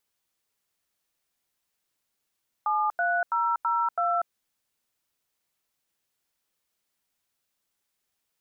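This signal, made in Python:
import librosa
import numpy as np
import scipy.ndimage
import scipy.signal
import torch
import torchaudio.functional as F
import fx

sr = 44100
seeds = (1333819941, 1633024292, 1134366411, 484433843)

y = fx.dtmf(sr, digits='73002', tone_ms=241, gap_ms=88, level_db=-25.0)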